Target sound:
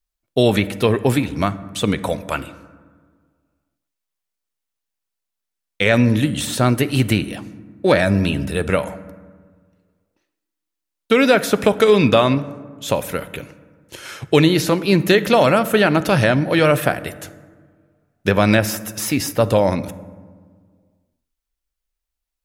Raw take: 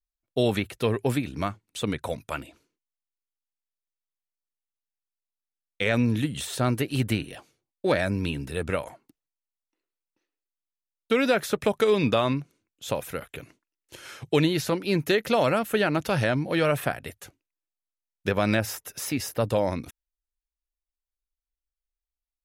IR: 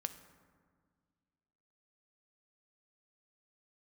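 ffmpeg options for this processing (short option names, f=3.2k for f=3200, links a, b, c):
-filter_complex "[0:a]asplit=2[a][b];[1:a]atrim=start_sample=2205,asetrate=48510,aresample=44100[c];[b][c]afir=irnorm=-1:irlink=0,volume=5.5dB[d];[a][d]amix=inputs=2:normalize=0,volume=1dB"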